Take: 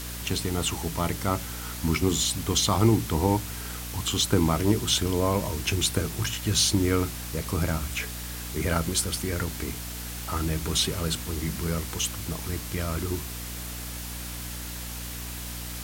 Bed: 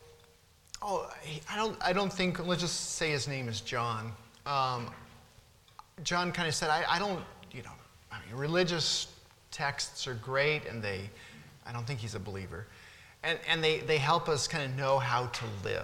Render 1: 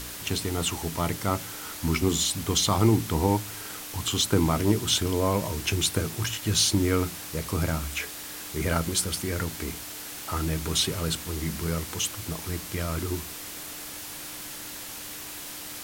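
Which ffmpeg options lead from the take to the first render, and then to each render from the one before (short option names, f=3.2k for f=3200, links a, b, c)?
-af "bandreject=f=60:t=h:w=4,bandreject=f=120:t=h:w=4,bandreject=f=180:t=h:w=4,bandreject=f=240:t=h:w=4"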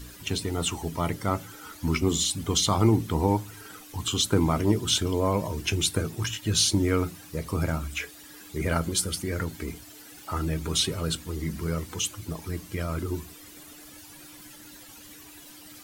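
-af "afftdn=nr=13:nf=-39"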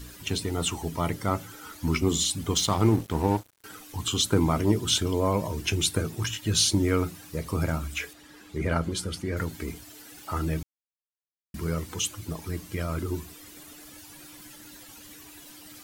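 -filter_complex "[0:a]asettb=1/sr,asplit=3[a][b][c];[a]atrim=end=2.544[d];[b]atrim=start=2.54:end=3.64,asetpts=PTS-STARTPTS,afade=t=in:d=0.004:c=qsin,afade=t=out:st=1.096:d=0.004:c=qsin,aeval=exprs='sgn(val(0))*max(abs(val(0))-0.0141,0)':c=same[e];[c]atrim=start=3.636[f];[d][e]acrossfade=d=0.004:c1=hsin:c2=qsin[g];[g][f]acrossfade=d=0.004:c1=qsin:c2=hsin,asettb=1/sr,asplit=3[h][i][j];[h]atrim=end=8.134[k];[i]atrim=start=8.13:end=9.37,asetpts=PTS-STARTPTS,afade=t=in:d=0.004:c=qsin,afade=t=out:st=1.236:d=0.004:c=qsin,aemphasis=mode=reproduction:type=50kf[l];[j]atrim=start=9.366[m];[k][l]acrossfade=d=0.004:c1=hsin:c2=qsin[n];[n][m]acrossfade=d=0.004:c1=qsin:c2=hsin,asplit=3[o][p][q];[o]atrim=end=10.63,asetpts=PTS-STARTPTS,afade=t=out:st=10.626:d=0.004:c=hsin[r];[p]atrim=start=10.63:end=11.54,asetpts=PTS-STARTPTS,volume=0[s];[q]atrim=start=11.54,asetpts=PTS-STARTPTS,afade=t=in:d=0.004:c=hsin[t];[r][s][t]concat=n=3:v=0:a=1"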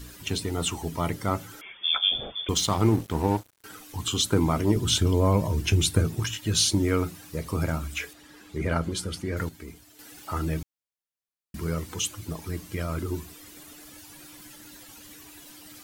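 -filter_complex "[0:a]asettb=1/sr,asplit=3[a][b][c];[a]atrim=end=1.614[d];[b]atrim=start=1.61:end=2.49,asetpts=PTS-STARTPTS,afade=t=in:d=0.004:c=qsin,afade=t=out:st=0.876:d=0.004:c=qsin,lowpass=f=3.1k:t=q:w=0.5098,lowpass=f=3.1k:t=q:w=0.6013,lowpass=f=3.1k:t=q:w=0.9,lowpass=f=3.1k:t=q:w=2.563,afreqshift=-3600[e];[c]atrim=start=2.486[f];[d][e]acrossfade=d=0.004:c1=hsin:c2=qsin[g];[g][f]acrossfade=d=0.004:c1=qsin:c2=hsin,asettb=1/sr,asplit=3[h][i][j];[h]atrim=end=4.764[k];[i]atrim=start=4.76:end=6.2,asetpts=PTS-STARTPTS,afade=t=in:d=0.004:c=qsin,afade=t=out:st=1.436:d=0.004:c=qsin,lowshelf=f=160:g=10[l];[j]atrim=start=6.196[m];[k][l]acrossfade=d=0.004:c1=hsin:c2=qsin[n];[n][m]acrossfade=d=0.004:c1=qsin:c2=hsin,asplit=3[o][p][q];[o]atrim=end=9.492[r];[p]atrim=start=9.488:end=9.992,asetpts=PTS-STARTPTS,volume=-7.5dB[s];[q]atrim=start=9.988[t];[r][s]acrossfade=d=0.004:c1=hsin:c2=hsin[u];[u][t]acrossfade=d=0.004:c1=hsin:c2=hsin"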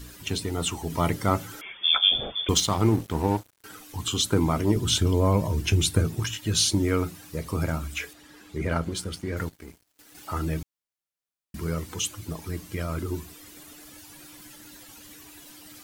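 -filter_complex "[0:a]asettb=1/sr,asplit=3[a][b][c];[a]atrim=end=8.644[d];[b]atrim=start=8.64:end=10.15,asetpts=PTS-STARTPTS,afade=t=in:d=0.004:c=qsin,afade=t=out:st=1.506:d=0.004:c=qsin,aeval=exprs='sgn(val(0))*max(abs(val(0))-0.00335,0)':c=same[e];[c]atrim=start=10.146[f];[d][e]acrossfade=d=0.004:c1=hsin:c2=qsin[g];[g][f]acrossfade=d=0.004:c1=qsin:c2=hsin,asplit=3[h][i][j];[h]atrim=end=0.902[k];[i]atrim=start=0.898:end=2.602,asetpts=PTS-STARTPTS,volume=3.5dB[l];[j]atrim=start=2.598[m];[k][l]acrossfade=d=0.004:c1=hsin:c2=hsin[n];[n][m]acrossfade=d=0.004:c1=hsin:c2=hsin"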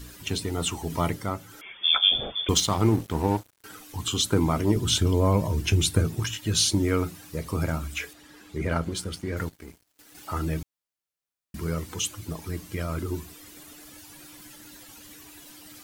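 -filter_complex "[0:a]asplit=3[a][b][c];[a]atrim=end=1.35,asetpts=PTS-STARTPTS,afade=t=out:st=0.94:d=0.41:silence=0.375837[d];[b]atrim=start=1.35:end=1.45,asetpts=PTS-STARTPTS,volume=-8.5dB[e];[c]atrim=start=1.45,asetpts=PTS-STARTPTS,afade=t=in:d=0.41:silence=0.375837[f];[d][e][f]concat=n=3:v=0:a=1"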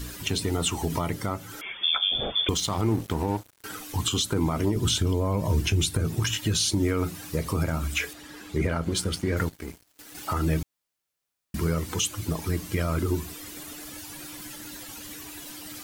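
-filter_complex "[0:a]asplit=2[a][b];[b]acompressor=threshold=-30dB:ratio=6,volume=1dB[c];[a][c]amix=inputs=2:normalize=0,alimiter=limit=-14.5dB:level=0:latency=1:release=142"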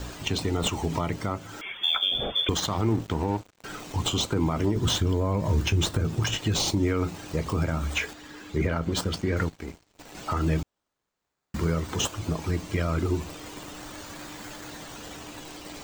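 -filter_complex "[0:a]acrossover=split=500|6500[a][b][c];[c]acrusher=samples=21:mix=1:aa=0.000001:lfo=1:lforange=12.6:lforate=0.33[d];[a][b][d]amix=inputs=3:normalize=0,aexciter=amount=1.9:drive=3.2:freq=6.8k"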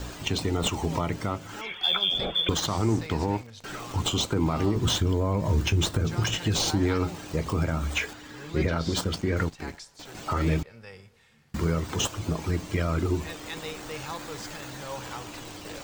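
-filter_complex "[1:a]volume=-10dB[a];[0:a][a]amix=inputs=2:normalize=0"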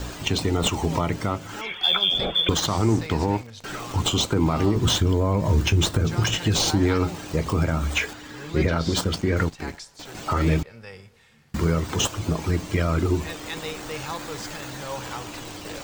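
-af "volume=4dB"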